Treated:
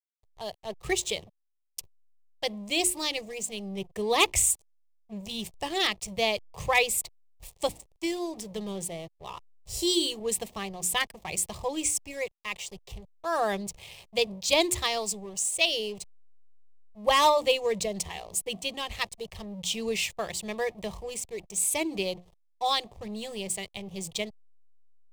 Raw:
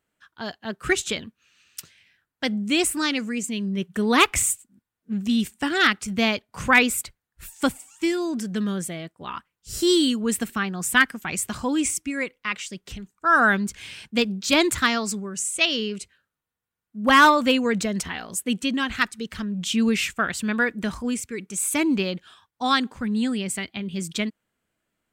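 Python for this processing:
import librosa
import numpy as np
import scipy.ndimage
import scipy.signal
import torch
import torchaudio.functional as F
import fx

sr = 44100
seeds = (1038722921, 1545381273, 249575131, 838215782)

y = fx.hum_notches(x, sr, base_hz=60, count=6)
y = fx.backlash(y, sr, play_db=-35.0)
y = fx.fixed_phaser(y, sr, hz=610.0, stages=4)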